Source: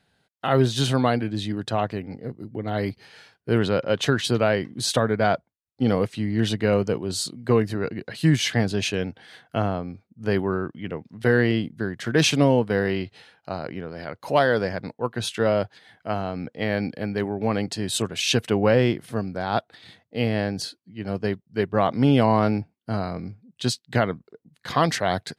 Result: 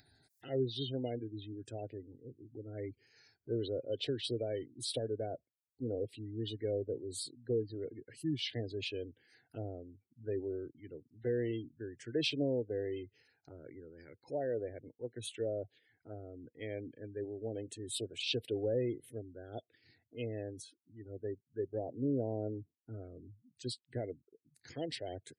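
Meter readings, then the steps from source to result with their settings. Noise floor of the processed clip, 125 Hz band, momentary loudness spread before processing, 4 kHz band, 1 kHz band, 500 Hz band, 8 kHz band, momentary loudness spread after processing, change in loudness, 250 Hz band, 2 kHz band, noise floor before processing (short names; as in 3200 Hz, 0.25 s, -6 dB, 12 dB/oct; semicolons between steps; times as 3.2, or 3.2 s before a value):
under -85 dBFS, -17.5 dB, 13 LU, -13.5 dB, -26.0 dB, -13.5 dB, -16.5 dB, 16 LU, -15.5 dB, -16.5 dB, -22.5 dB, -76 dBFS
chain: spectral gate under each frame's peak -20 dB strong; HPF 220 Hz 6 dB/oct; fixed phaser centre 460 Hz, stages 4; envelope phaser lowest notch 510 Hz, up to 1200 Hz, full sweep at -24.5 dBFS; upward compressor, threshold -42 dBFS; bell 1200 Hz -12 dB 2.6 oct; gain -4 dB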